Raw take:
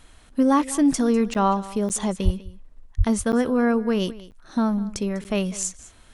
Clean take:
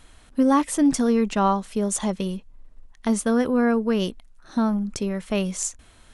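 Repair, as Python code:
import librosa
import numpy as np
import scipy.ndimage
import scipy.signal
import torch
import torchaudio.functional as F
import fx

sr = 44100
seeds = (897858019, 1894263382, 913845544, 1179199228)

y = fx.highpass(x, sr, hz=140.0, slope=24, at=(2.24, 2.36), fade=0.02)
y = fx.highpass(y, sr, hz=140.0, slope=24, at=(2.97, 3.09), fade=0.02)
y = fx.fix_interpolate(y, sr, at_s=(1.34, 1.89, 3.32, 4.31, 5.24), length_ms=9.1)
y = fx.fix_echo_inverse(y, sr, delay_ms=199, level_db=-18.5)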